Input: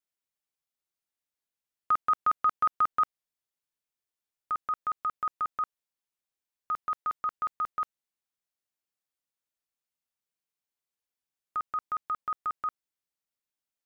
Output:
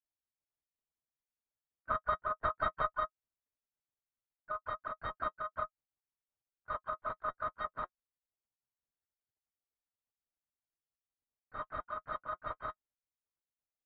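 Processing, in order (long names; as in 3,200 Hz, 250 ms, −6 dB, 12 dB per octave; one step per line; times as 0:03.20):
running median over 25 samples
in parallel at −8 dB: soft clipping −35 dBFS, distortion −10 dB
on the sum: linear-prediction vocoder at 8 kHz whisper
notch comb filter 180 Hz
pitch-shifted copies added −12 semitones −8 dB, −3 semitones −11 dB, +3 semitones −12 dB
low-pass filter 2,300 Hz 24 dB per octave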